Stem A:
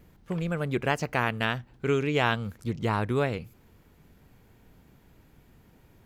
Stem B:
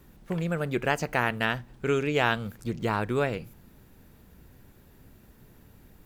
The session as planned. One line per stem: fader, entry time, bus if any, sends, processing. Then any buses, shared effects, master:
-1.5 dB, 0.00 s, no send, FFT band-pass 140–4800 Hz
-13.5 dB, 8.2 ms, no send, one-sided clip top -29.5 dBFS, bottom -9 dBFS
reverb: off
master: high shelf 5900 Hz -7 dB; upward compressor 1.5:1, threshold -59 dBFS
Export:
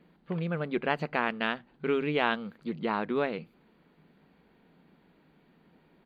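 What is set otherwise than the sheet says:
stem B -13.5 dB -> -22.0 dB; master: missing upward compressor 1.5:1, threshold -59 dBFS

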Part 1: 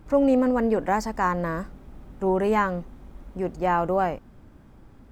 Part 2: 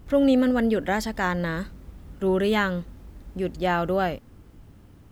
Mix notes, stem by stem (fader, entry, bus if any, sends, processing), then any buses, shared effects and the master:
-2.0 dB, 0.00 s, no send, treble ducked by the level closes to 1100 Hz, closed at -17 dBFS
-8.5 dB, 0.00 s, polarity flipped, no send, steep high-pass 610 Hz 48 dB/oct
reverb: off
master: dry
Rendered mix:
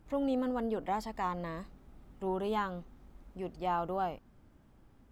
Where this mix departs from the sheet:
stem 1 -2.0 dB -> -11.5 dB; stem 2 -8.5 dB -> -15.5 dB

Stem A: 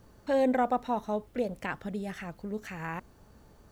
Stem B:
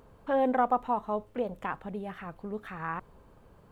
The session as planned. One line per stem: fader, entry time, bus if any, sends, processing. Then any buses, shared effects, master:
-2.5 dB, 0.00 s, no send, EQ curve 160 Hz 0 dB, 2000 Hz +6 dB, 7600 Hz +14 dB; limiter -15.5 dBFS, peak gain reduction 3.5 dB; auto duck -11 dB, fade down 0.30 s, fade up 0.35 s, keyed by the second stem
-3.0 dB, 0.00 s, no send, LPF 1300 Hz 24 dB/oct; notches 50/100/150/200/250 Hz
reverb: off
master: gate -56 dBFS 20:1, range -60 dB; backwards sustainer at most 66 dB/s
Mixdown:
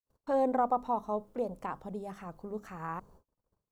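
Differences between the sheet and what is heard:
stem A -2.5 dB -> -10.5 dB; master: missing backwards sustainer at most 66 dB/s

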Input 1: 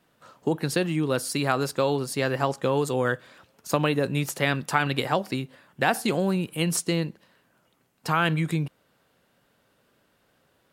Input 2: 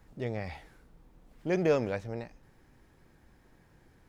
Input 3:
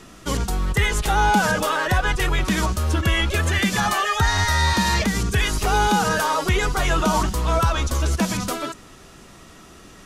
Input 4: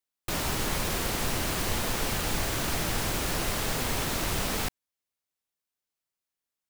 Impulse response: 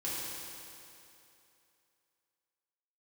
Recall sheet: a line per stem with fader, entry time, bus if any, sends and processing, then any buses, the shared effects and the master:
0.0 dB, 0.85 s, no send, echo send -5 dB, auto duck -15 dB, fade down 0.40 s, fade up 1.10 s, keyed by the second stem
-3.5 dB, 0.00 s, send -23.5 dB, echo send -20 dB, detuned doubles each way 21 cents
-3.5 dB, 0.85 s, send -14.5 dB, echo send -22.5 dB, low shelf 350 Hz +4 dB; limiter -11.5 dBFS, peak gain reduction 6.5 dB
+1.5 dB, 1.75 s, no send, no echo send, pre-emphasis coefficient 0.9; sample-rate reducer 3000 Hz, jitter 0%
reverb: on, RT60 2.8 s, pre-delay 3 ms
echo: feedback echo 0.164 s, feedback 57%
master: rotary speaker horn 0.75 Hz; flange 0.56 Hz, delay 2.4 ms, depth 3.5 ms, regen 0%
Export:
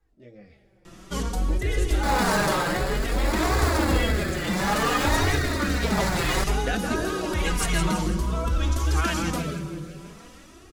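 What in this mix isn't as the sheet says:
stem 4 +1.5 dB -> +10.0 dB; reverb return +8.0 dB

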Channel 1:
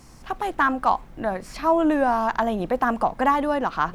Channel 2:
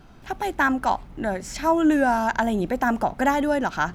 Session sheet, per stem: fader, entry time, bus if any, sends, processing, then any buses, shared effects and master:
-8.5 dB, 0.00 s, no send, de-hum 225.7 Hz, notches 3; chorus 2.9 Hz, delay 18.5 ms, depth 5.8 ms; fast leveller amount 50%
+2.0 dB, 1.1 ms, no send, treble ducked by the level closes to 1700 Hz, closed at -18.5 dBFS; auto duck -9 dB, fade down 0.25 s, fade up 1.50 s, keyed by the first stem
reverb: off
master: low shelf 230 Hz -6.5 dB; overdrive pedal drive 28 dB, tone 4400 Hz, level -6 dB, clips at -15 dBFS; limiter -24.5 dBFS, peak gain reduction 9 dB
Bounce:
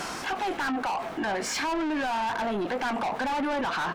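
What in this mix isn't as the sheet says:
stem 1 -8.5 dB -> -16.0 dB; stem 2: polarity flipped

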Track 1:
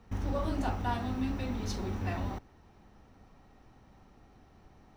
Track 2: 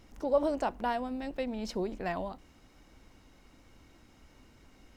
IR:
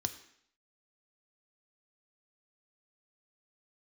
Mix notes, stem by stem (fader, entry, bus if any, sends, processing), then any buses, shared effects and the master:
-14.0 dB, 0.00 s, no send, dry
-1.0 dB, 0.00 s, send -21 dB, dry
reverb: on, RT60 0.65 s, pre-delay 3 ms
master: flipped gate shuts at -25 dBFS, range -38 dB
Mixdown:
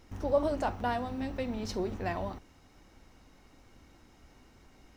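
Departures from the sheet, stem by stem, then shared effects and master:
stem 1 -14.0 dB -> -6.5 dB; master: missing flipped gate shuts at -25 dBFS, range -38 dB

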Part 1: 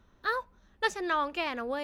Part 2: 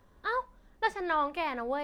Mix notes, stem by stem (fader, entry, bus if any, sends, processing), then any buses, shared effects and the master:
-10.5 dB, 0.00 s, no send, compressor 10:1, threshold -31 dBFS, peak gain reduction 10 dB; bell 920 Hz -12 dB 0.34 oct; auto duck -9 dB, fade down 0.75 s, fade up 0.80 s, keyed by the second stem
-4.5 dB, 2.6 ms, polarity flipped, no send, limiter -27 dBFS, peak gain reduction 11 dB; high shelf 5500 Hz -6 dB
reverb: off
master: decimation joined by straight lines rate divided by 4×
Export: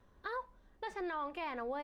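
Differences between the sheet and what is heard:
stem 2: polarity flipped; master: missing decimation joined by straight lines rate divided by 4×

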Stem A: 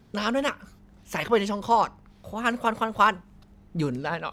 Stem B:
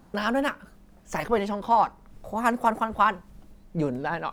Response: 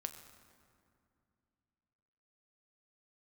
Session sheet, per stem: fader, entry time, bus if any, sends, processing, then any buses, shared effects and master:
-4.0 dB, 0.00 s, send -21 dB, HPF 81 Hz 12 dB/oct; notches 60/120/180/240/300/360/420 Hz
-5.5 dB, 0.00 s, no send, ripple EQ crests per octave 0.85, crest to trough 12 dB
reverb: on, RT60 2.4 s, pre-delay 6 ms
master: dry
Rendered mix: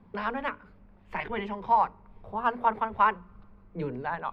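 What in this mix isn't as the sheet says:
stem B: polarity flipped; master: extra air absorption 460 m

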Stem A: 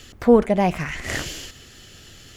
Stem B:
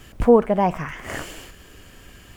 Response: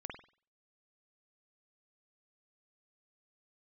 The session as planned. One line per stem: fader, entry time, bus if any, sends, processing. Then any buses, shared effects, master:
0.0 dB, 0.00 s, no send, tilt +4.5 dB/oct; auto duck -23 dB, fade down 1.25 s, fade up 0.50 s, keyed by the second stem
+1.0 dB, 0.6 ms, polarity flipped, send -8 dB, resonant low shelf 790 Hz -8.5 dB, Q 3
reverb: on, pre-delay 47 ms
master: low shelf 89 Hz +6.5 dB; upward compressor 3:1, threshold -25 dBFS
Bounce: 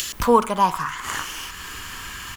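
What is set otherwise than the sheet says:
stem A 0.0 dB -> +6.5 dB; master: missing low shelf 89 Hz +6.5 dB

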